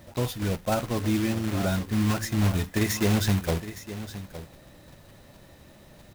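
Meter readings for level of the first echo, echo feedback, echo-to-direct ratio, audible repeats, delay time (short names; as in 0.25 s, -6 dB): -13.5 dB, no steady repeat, -13.5 dB, 1, 0.864 s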